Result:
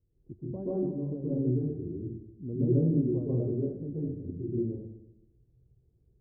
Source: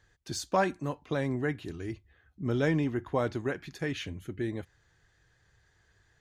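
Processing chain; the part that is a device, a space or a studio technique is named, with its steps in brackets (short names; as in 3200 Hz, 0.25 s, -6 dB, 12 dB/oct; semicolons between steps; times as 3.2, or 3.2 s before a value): next room (LPF 410 Hz 24 dB/oct; reverb RT60 0.85 s, pre-delay 0.12 s, DRR -8.5 dB); gain -6 dB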